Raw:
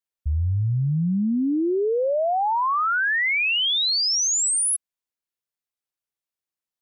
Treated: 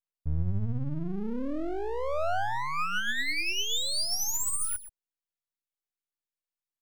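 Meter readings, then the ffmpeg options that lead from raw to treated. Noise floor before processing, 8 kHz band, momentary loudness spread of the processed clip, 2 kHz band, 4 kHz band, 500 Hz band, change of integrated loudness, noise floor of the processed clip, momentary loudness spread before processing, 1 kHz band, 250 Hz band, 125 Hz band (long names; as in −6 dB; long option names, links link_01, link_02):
below −85 dBFS, −9.5 dB, 6 LU, −9.0 dB, −9.0 dB, −10.0 dB, −9.0 dB, below −85 dBFS, 5 LU, −9.5 dB, −11.0 dB, −9.0 dB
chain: -filter_complex "[0:a]adynamicequalizer=threshold=0.0112:dfrequency=860:dqfactor=6.4:tfrequency=860:tqfactor=6.4:attack=5:release=100:ratio=0.375:range=2.5:mode=cutabove:tftype=bell,aphaser=in_gain=1:out_gain=1:delay=2.7:decay=0.28:speed=0.42:type=sinusoidal,asplit=2[link_01][link_02];[link_02]adelay=128.3,volume=-12dB,highshelf=frequency=4000:gain=-2.89[link_03];[link_01][link_03]amix=inputs=2:normalize=0,aeval=exprs='max(val(0),0)':channel_layout=same,volume=-4.5dB"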